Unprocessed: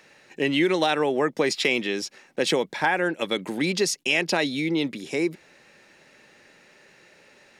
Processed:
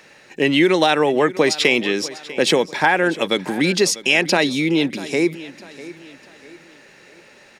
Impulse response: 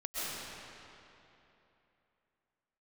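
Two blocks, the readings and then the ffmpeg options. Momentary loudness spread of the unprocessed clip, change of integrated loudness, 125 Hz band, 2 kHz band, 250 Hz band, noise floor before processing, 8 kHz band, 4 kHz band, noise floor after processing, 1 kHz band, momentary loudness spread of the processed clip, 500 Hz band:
6 LU, +6.5 dB, +6.5 dB, +6.5 dB, +6.5 dB, -56 dBFS, +6.5 dB, +6.5 dB, -48 dBFS, +6.5 dB, 13 LU, +6.5 dB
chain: -af "aecho=1:1:646|1292|1938:0.133|0.0533|0.0213,volume=6.5dB"

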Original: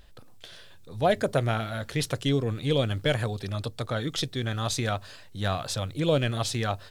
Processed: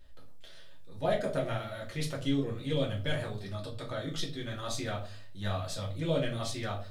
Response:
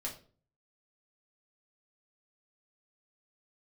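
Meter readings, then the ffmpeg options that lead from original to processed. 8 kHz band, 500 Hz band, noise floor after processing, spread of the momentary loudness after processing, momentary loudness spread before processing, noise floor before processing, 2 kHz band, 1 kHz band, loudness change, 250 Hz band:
-8.0 dB, -6.0 dB, -44 dBFS, 8 LU, 8 LU, -48 dBFS, -7.0 dB, -8.0 dB, -6.5 dB, -4.5 dB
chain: -filter_complex "[1:a]atrim=start_sample=2205[a];[0:a][a]afir=irnorm=-1:irlink=0,volume=-7dB"

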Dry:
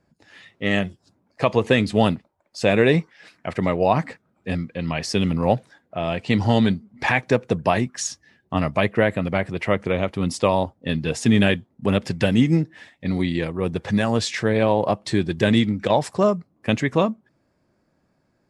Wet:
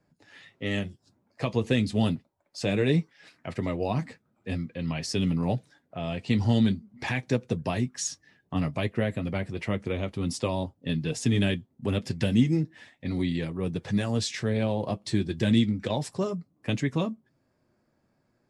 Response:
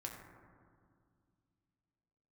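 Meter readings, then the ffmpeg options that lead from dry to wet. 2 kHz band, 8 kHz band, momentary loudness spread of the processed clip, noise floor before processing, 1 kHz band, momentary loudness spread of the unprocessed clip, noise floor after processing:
-10.5 dB, -4.0 dB, 11 LU, -68 dBFS, -12.5 dB, 10 LU, -72 dBFS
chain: -filter_complex "[0:a]acrossover=split=360|3000[a][b][c];[b]acompressor=threshold=-45dB:ratio=1.5[d];[a][d][c]amix=inputs=3:normalize=0,flanger=delay=6.6:depth=2.2:regen=-48:speed=0.36:shape=triangular"

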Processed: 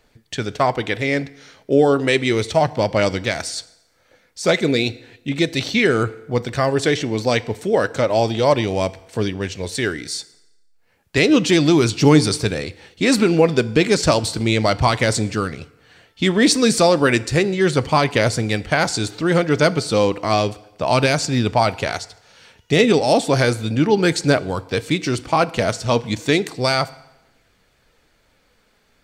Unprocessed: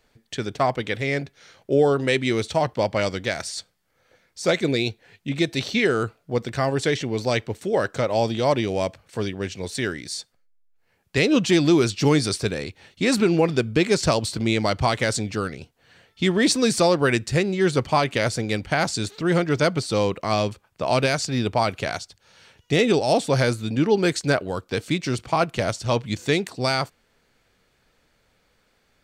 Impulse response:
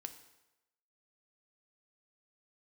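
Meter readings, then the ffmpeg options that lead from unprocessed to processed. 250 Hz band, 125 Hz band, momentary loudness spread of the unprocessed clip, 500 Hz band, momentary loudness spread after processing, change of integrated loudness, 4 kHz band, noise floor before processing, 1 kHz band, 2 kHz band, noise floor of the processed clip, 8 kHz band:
+4.5 dB, +4.0 dB, 10 LU, +4.0 dB, 10 LU, +4.0 dB, +4.5 dB, -66 dBFS, +4.5 dB, +4.5 dB, -61 dBFS, +4.5 dB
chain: -filter_complex "[0:a]aphaser=in_gain=1:out_gain=1:delay=4.9:decay=0.21:speed=0.33:type=triangular,asplit=2[a][b];[1:a]atrim=start_sample=2205[c];[b][c]afir=irnorm=-1:irlink=0,volume=0dB[d];[a][d]amix=inputs=2:normalize=0"

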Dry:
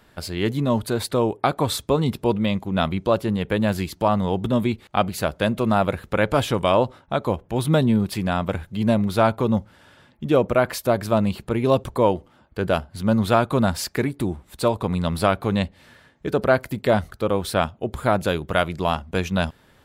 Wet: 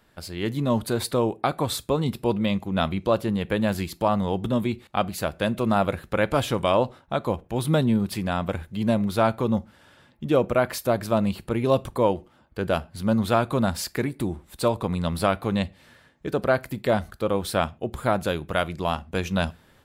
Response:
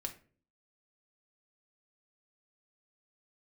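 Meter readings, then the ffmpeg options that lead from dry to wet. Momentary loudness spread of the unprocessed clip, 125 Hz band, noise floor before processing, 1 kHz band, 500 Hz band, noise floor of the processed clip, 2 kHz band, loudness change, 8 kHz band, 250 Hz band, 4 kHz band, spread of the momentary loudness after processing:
6 LU, -3.0 dB, -56 dBFS, -3.0 dB, -2.5 dB, -58 dBFS, -3.0 dB, -2.5 dB, -1.5 dB, -2.5 dB, -2.5 dB, 6 LU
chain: -filter_complex "[0:a]dynaudnorm=f=360:g=3:m=6dB,asplit=2[a][b];[1:a]atrim=start_sample=2205,atrim=end_sample=6174,highshelf=f=5.4k:g=9[c];[b][c]afir=irnorm=-1:irlink=0,volume=-11.5dB[d];[a][d]amix=inputs=2:normalize=0,volume=-8dB"

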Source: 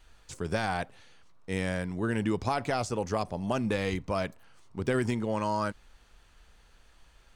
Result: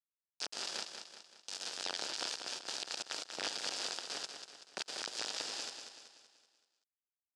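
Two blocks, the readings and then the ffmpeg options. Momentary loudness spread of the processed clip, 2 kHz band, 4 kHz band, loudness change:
12 LU, -8.5 dB, +6.0 dB, -8.5 dB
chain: -af "bandreject=f=3.9k:w=6.7,afftfilt=real='re*gte(hypot(re,im),0.0631)':imag='im*gte(hypot(re,im),0.0631)':win_size=1024:overlap=0.75,adynamicequalizer=threshold=0.00631:dfrequency=890:dqfactor=1.2:tfrequency=890:tqfactor=1.2:attack=5:release=100:ratio=0.375:range=1.5:mode=boostabove:tftype=bell,acompressor=mode=upward:threshold=-30dB:ratio=2.5,aeval=exprs='(mod(28.2*val(0)+1,2)-1)/28.2':c=same,acrusher=bits=4:mix=0:aa=0.000001,adynamicsmooth=sensitivity=2.5:basefreq=6k,highpass=350,equalizer=f=1.1k:t=q:w=4:g=-7,equalizer=f=2.1k:t=q:w=4:g=-9,equalizer=f=4.9k:t=q:w=4:g=7,lowpass=f=8.3k:w=0.5412,lowpass=f=8.3k:w=1.3066,aecho=1:1:190|380|570|760|950|1140:0.422|0.202|0.0972|0.0466|0.0224|0.0107,volume=-1dB"

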